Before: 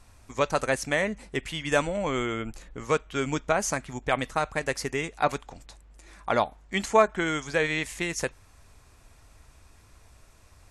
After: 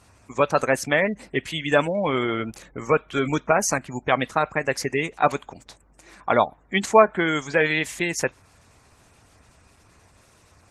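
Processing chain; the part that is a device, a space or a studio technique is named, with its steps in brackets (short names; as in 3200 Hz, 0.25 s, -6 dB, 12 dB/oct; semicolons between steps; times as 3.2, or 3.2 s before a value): noise-suppressed video call (HPF 100 Hz 12 dB/oct; spectral gate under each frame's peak -25 dB strong; gain +5.5 dB; Opus 16 kbps 48000 Hz)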